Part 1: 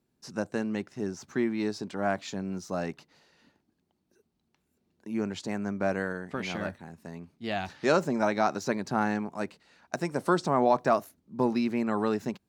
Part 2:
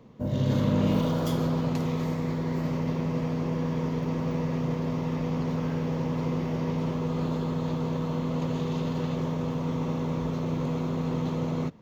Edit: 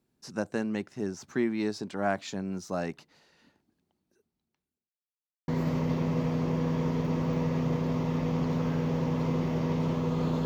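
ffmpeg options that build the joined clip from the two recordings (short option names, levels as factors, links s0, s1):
-filter_complex "[0:a]apad=whole_dur=10.45,atrim=end=10.45,asplit=2[s0][s1];[s0]atrim=end=4.9,asetpts=PTS-STARTPTS,afade=t=out:st=3.72:d=1.18[s2];[s1]atrim=start=4.9:end=5.48,asetpts=PTS-STARTPTS,volume=0[s3];[1:a]atrim=start=2.46:end=7.43,asetpts=PTS-STARTPTS,afade=t=in:d=0.004:c=hsin[s4];[s2][s3][s4]concat=n=3:v=0:a=1"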